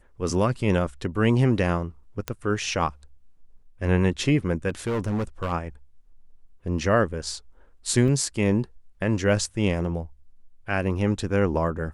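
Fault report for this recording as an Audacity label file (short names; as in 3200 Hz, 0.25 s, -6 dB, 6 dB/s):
2.280000	2.280000	pop -12 dBFS
4.680000	5.530000	clipped -22.5 dBFS
8.080000	8.080000	gap 4.1 ms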